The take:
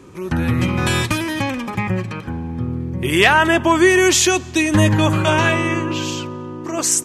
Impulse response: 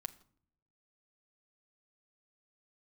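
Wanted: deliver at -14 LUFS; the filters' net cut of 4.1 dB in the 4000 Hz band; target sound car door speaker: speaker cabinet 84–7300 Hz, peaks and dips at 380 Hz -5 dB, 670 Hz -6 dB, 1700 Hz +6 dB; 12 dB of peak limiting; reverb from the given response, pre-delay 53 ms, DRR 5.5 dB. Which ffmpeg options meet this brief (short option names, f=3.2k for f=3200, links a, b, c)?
-filter_complex "[0:a]equalizer=f=4k:t=o:g=-6,alimiter=limit=-13.5dB:level=0:latency=1,asplit=2[a][b];[1:a]atrim=start_sample=2205,adelay=53[c];[b][c]afir=irnorm=-1:irlink=0,volume=-2.5dB[d];[a][d]amix=inputs=2:normalize=0,highpass=84,equalizer=f=380:t=q:w=4:g=-5,equalizer=f=670:t=q:w=4:g=-6,equalizer=f=1.7k:t=q:w=4:g=6,lowpass=f=7.3k:w=0.5412,lowpass=f=7.3k:w=1.3066,volume=8.5dB"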